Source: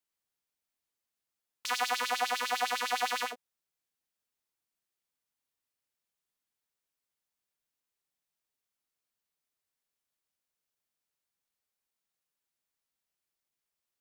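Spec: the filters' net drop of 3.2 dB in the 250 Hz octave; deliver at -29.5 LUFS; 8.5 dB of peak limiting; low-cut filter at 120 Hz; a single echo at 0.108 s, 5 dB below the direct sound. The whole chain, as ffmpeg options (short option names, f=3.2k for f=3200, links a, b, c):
-af "highpass=120,equalizer=f=250:t=o:g=-3,alimiter=limit=-24dB:level=0:latency=1,aecho=1:1:108:0.562,volume=6dB"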